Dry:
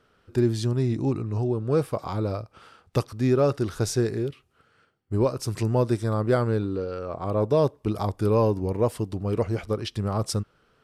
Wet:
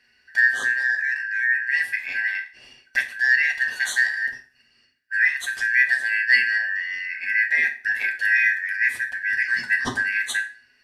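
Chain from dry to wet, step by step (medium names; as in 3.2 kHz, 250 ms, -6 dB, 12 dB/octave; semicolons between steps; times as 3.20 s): four frequency bands reordered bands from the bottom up 3142; 9.48–10.03 s: ten-band graphic EQ 125 Hz +5 dB, 250 Hz +9 dB, 1 kHz +9 dB, 8 kHz +5 dB; reverberation RT60 0.45 s, pre-delay 4 ms, DRR 1.5 dB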